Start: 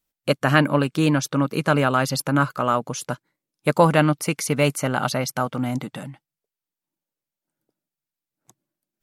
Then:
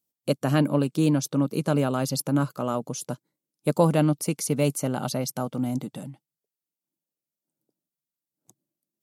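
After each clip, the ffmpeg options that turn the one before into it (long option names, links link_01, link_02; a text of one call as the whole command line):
ffmpeg -i in.wav -af "highpass=130,equalizer=frequency=1700:width_type=o:width=2.1:gain=-14.5" out.wav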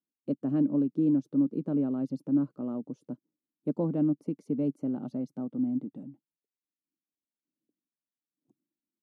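ffmpeg -i in.wav -af "bandpass=frequency=270:width_type=q:width=2.8:csg=0" out.wav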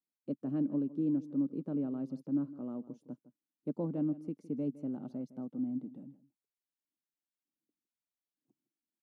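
ffmpeg -i in.wav -af "aecho=1:1:160:0.141,volume=-6.5dB" out.wav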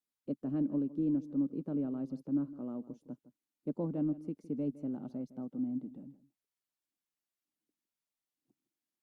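ffmpeg -i in.wav -ar 48000 -c:a libopus -b:a 64k out.opus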